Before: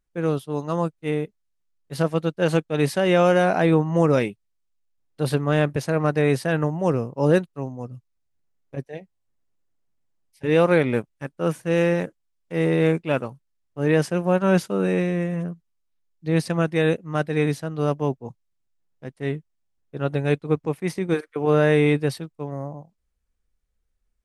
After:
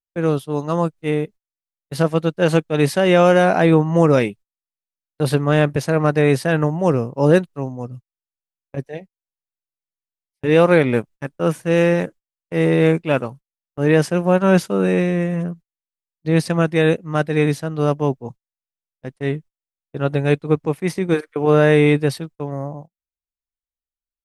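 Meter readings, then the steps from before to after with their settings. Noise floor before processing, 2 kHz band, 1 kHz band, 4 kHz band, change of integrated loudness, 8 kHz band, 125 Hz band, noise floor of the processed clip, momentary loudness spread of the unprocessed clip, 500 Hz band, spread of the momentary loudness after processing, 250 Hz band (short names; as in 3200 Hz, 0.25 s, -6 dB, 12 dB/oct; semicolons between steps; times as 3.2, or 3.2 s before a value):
-73 dBFS, +4.5 dB, +4.5 dB, +4.5 dB, +4.5 dB, +4.5 dB, +4.5 dB, under -85 dBFS, 17 LU, +4.5 dB, 17 LU, +4.5 dB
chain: gate -41 dBFS, range -30 dB; gain +4.5 dB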